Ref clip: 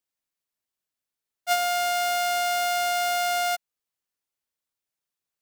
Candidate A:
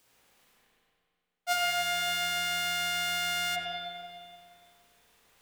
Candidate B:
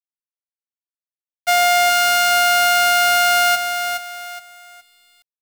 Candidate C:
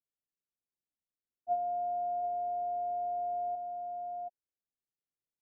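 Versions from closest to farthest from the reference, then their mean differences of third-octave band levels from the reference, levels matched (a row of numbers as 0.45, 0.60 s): B, A, C; 2.0, 5.5, 19.0 dB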